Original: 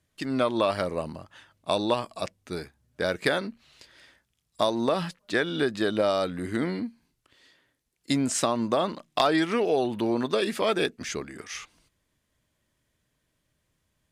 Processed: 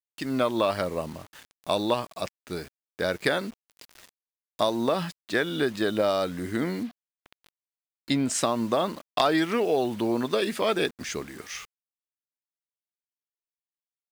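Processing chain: word length cut 8-bit, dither none; upward compressor, threshold -41 dBFS; 6.83–8.30 s: resonant high shelf 5.1 kHz -7 dB, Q 1.5

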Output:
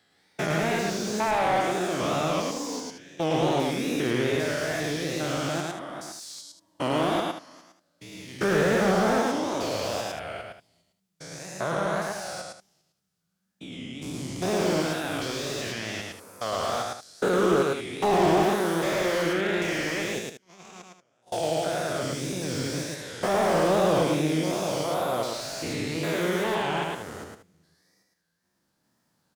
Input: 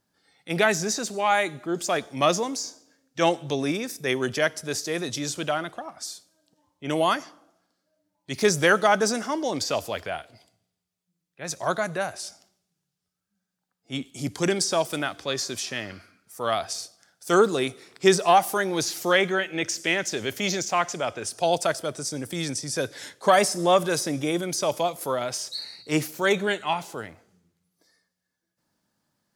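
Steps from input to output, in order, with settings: spectrogram pixelated in time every 400 ms; 20.19–21.33 s: gate -26 dBFS, range -39 dB; wow and flutter 140 cents; loudspeakers at several distances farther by 37 m -3 dB, 63 m -12 dB; slew-rate limiter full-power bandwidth 64 Hz; trim +3 dB

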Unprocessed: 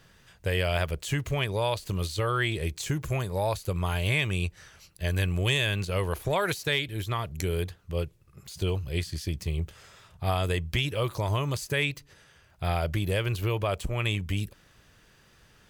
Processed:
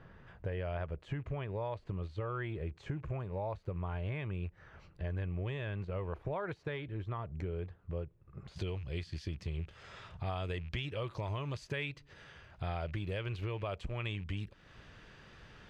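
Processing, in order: rattle on loud lows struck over -34 dBFS, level -38 dBFS; low-pass 1.4 kHz 12 dB/octave, from 8.56 s 3.6 kHz; compression 2.5:1, threshold -46 dBFS, peak gain reduction 15.5 dB; trim +4 dB

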